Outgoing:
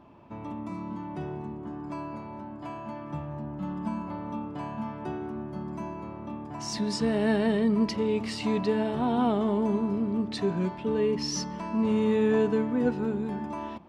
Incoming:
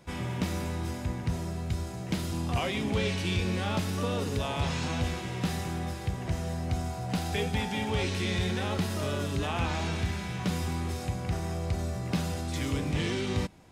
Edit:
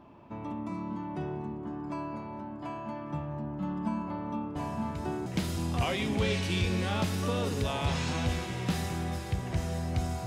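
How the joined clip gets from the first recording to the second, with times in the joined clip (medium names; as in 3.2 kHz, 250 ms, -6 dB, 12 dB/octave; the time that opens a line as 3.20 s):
outgoing
4.56 s: add incoming from 1.31 s 0.70 s -8.5 dB
5.26 s: go over to incoming from 2.01 s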